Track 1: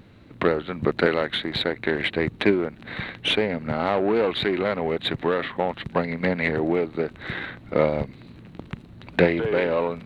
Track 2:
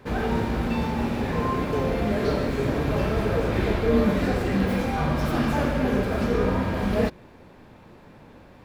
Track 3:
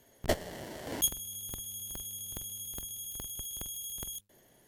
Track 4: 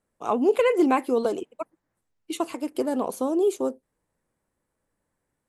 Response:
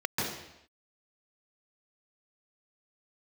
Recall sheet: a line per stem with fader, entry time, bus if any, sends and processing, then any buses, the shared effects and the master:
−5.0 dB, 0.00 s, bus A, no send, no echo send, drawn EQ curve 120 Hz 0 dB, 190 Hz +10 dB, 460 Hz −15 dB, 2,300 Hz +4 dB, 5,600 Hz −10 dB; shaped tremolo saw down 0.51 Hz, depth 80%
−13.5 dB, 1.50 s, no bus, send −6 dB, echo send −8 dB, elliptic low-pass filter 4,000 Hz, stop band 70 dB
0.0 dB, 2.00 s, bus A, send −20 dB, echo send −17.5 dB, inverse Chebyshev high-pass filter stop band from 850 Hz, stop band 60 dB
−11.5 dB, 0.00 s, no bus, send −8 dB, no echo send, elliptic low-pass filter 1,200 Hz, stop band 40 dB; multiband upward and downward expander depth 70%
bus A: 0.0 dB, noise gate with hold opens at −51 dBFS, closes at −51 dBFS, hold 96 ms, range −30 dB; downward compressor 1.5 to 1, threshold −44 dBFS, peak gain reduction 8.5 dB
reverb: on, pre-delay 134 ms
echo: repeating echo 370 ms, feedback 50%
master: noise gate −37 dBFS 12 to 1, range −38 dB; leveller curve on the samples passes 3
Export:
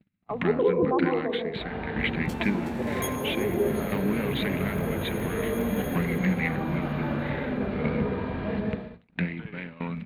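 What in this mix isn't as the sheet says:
stem 1 −5.0 dB → +6.0 dB
master: missing leveller curve on the samples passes 3

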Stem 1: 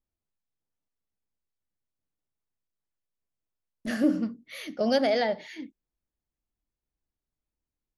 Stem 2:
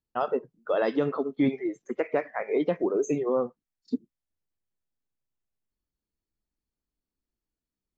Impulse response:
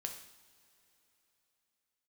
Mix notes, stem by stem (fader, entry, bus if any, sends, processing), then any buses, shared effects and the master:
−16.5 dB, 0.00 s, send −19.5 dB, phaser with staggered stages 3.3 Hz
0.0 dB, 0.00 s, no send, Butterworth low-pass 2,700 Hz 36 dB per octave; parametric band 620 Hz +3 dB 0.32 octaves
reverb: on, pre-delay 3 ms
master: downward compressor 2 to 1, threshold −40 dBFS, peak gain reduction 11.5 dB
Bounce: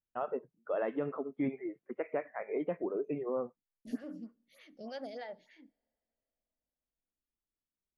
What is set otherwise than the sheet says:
stem 2 0.0 dB → −9.5 dB
master: missing downward compressor 2 to 1, threshold −40 dBFS, peak gain reduction 11.5 dB

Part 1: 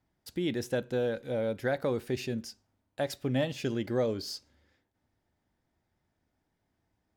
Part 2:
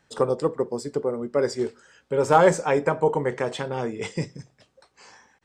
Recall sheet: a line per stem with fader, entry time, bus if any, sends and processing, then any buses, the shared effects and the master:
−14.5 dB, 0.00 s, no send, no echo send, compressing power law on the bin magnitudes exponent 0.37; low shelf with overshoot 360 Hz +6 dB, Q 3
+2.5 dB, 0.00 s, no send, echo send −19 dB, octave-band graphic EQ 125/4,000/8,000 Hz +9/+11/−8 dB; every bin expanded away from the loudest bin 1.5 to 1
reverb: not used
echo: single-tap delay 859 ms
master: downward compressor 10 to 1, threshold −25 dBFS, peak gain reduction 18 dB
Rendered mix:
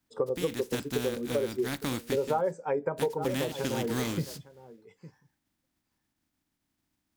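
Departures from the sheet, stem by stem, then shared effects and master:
stem 1 −14.5 dB → −4.5 dB
stem 2: missing octave-band graphic EQ 125/4,000/8,000 Hz +9/+11/−8 dB

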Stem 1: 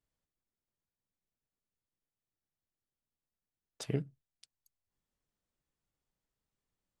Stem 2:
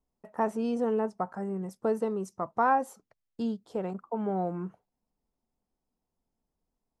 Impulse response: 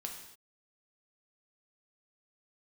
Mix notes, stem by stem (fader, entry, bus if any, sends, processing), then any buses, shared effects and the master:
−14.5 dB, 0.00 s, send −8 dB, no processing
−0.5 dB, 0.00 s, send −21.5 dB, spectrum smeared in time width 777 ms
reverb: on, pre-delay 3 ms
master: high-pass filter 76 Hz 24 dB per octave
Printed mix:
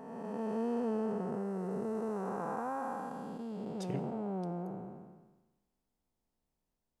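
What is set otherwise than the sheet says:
stem 1 −14.5 dB → −7.5 dB
master: missing high-pass filter 76 Hz 24 dB per octave

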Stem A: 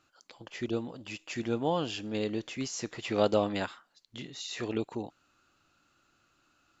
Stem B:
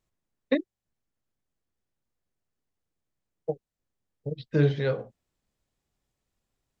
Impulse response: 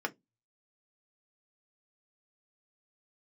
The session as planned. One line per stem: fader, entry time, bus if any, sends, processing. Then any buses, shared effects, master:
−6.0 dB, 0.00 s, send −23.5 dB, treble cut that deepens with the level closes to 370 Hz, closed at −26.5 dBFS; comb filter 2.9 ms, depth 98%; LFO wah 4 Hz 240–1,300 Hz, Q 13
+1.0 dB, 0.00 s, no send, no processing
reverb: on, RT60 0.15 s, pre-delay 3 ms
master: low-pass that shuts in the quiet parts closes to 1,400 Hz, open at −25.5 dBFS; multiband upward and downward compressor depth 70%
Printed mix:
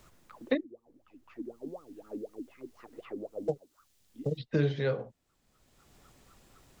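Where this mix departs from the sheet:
stem A: missing comb filter 2.9 ms, depth 98%
master: missing low-pass that shuts in the quiet parts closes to 1,400 Hz, open at −25.5 dBFS

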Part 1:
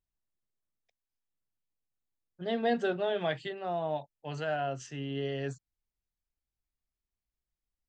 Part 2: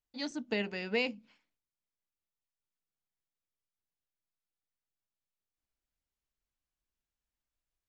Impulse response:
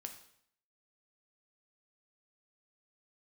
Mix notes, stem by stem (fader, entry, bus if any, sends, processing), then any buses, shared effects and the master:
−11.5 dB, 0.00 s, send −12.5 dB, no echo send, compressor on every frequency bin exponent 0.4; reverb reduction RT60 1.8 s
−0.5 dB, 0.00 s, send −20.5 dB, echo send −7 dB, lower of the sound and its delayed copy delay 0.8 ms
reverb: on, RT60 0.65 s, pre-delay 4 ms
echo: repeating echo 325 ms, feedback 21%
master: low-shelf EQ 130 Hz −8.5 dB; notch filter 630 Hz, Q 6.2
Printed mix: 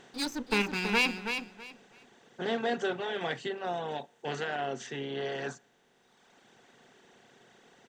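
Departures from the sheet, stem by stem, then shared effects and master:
stem 1 −11.5 dB → −2.0 dB
stem 2 −0.5 dB → +6.5 dB

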